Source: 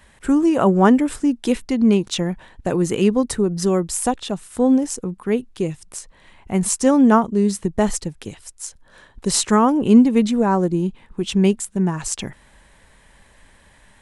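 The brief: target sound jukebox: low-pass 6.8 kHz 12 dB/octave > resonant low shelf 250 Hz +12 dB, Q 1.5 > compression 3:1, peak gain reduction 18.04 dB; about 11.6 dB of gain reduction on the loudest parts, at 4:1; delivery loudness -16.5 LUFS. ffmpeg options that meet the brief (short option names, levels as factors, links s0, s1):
-af "acompressor=threshold=0.0891:ratio=4,lowpass=6800,lowshelf=f=250:t=q:w=1.5:g=12,acompressor=threshold=0.0224:ratio=3,volume=6.31"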